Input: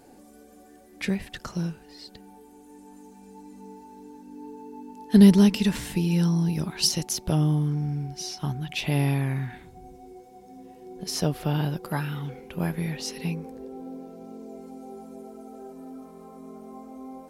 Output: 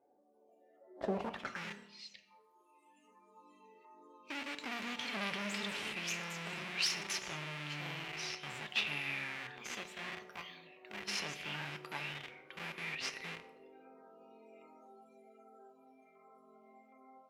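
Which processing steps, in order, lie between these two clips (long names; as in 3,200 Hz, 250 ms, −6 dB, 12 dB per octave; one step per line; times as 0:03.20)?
delay with pitch and tempo change per echo 333 ms, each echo +3 semitones, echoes 2, each echo −6 dB
auto-filter notch saw down 1.3 Hz 970–3,700 Hz
in parallel at −5 dB: comparator with hysteresis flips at −29 dBFS
on the sum: noise reduction from a noise print of the clip's start 17 dB
soft clipping −18.5 dBFS, distortion −9 dB
band-pass filter sweep 610 Hz → 2,400 Hz, 0:01.12–0:01.64
on a send at −8.5 dB: convolution reverb RT60 0.85 s, pre-delay 3 ms
on the sum: level +3.5 dB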